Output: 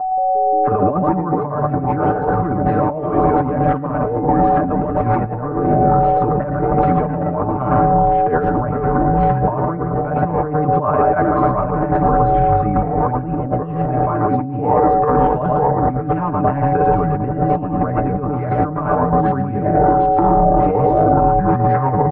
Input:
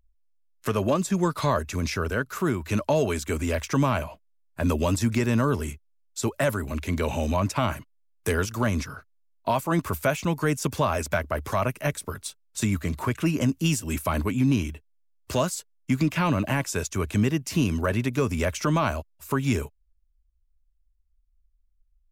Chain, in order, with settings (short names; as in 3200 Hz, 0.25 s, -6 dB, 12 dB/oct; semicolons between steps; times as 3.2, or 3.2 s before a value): switching spikes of -31 dBFS; whine 750 Hz -37 dBFS; echoes that change speed 0.175 s, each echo -5 st, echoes 3; comb 6.7 ms, depth 98%; on a send: echo 0.112 s -7.5 dB; on the sum: Schroeder reverb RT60 3 s, combs from 31 ms, DRR 18.5 dB; in parallel at +2.5 dB: limiter -15.5 dBFS, peak gain reduction 11 dB; on the sum: negative-ratio compressor -17 dBFS, ratio -0.5; LPF 1300 Hz 24 dB/oct; low shelf 170 Hz -4 dB; gain +3.5 dB